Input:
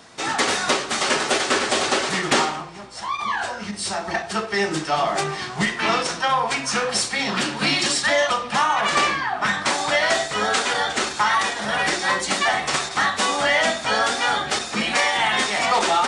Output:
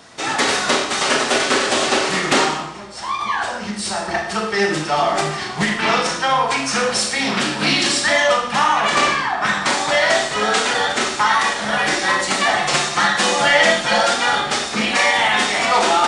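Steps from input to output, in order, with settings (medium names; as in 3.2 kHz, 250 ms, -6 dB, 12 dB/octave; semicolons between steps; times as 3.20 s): 12.57–14.14 s: comb 5.7 ms, depth 81%; Schroeder reverb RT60 0.68 s, combs from 26 ms, DRR 3.5 dB; loudspeaker Doppler distortion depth 0.13 ms; trim +2 dB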